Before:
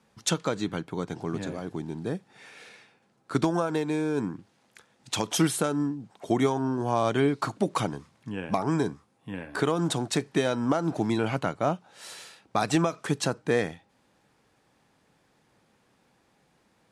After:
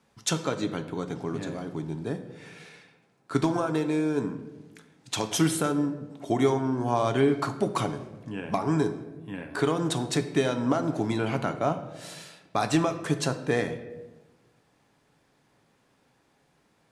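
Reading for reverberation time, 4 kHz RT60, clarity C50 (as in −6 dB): 1.2 s, 0.70 s, 11.0 dB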